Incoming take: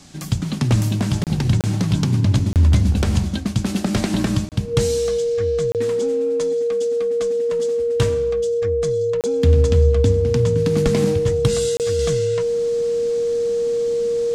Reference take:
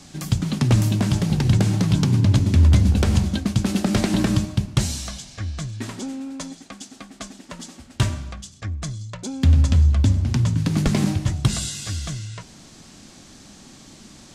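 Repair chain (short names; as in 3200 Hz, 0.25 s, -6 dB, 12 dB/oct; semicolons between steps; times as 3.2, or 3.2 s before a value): notch 470 Hz, Q 30; interpolate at 1.24/1.61/2.53/4.49/5.72/9.21/11.77, 28 ms; gain correction -5 dB, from 11.99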